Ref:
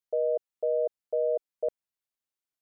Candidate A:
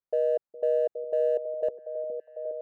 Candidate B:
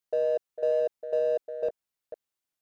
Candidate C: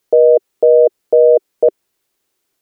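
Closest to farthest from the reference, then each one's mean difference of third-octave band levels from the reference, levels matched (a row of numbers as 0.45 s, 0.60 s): C, A, B; 1.5 dB, 2.5 dB, 6.0 dB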